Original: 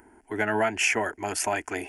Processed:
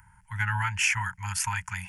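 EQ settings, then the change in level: Chebyshev band-stop 180–890 Hz, order 5; low shelf 90 Hz +7 dB; bell 140 Hz +11.5 dB 1.5 oct; 0.0 dB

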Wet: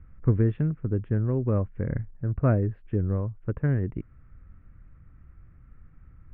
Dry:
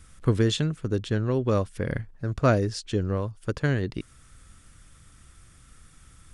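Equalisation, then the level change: steep low-pass 2400 Hz 36 dB/oct; air absorption 450 m; low shelf 290 Hz +9.5 dB; -6.0 dB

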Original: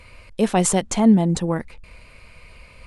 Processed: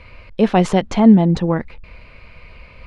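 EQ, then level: air absorption 270 m; high shelf 4100 Hz +6.5 dB; +5.0 dB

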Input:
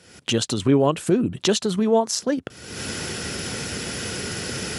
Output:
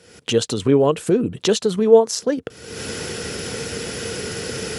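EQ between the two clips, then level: bell 460 Hz +10 dB 0.27 oct; 0.0 dB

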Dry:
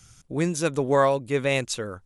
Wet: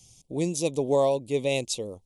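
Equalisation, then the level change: Butterworth band-stop 1500 Hz, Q 0.76; low shelf 180 Hz -7.5 dB; 0.0 dB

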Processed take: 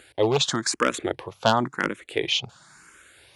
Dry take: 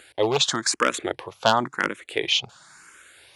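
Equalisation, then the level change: low shelf 360 Hz +8 dB; -2.5 dB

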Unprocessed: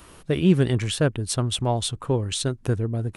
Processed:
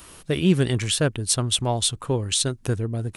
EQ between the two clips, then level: high shelf 2600 Hz +8.5 dB; -1.0 dB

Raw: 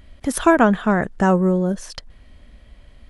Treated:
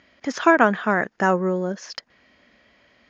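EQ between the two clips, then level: HPF 240 Hz 12 dB/oct; rippled Chebyshev low-pass 6900 Hz, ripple 6 dB; +3.5 dB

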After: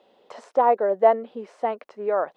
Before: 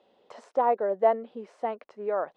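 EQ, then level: low shelf 150 Hz -6 dB; +5.5 dB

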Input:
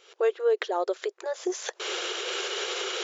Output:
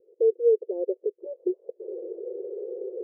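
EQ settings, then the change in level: Chebyshev low-pass 510 Hz, order 5; low shelf 300 Hz -8.5 dB; +6.5 dB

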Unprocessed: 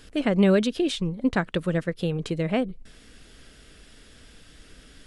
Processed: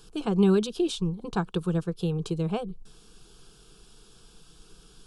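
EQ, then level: fixed phaser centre 390 Hz, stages 8; 0.0 dB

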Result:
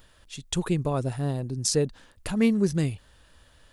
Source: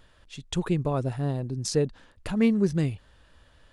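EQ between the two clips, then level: high shelf 4700 Hz +6.5 dB; high shelf 10000 Hz +7.5 dB; 0.0 dB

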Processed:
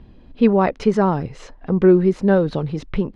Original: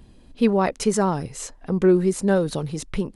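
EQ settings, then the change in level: air absorption 260 m; +4.5 dB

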